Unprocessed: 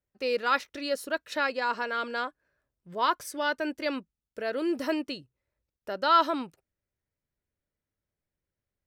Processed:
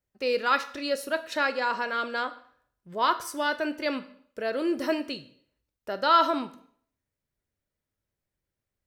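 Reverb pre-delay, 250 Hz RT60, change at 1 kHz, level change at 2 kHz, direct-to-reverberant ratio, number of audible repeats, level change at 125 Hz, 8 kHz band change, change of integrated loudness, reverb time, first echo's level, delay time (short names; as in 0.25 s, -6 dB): 4 ms, 0.50 s, +1.5 dB, +1.5 dB, 10.0 dB, none, +1.5 dB, +2.0 dB, +1.5 dB, 0.60 s, none, none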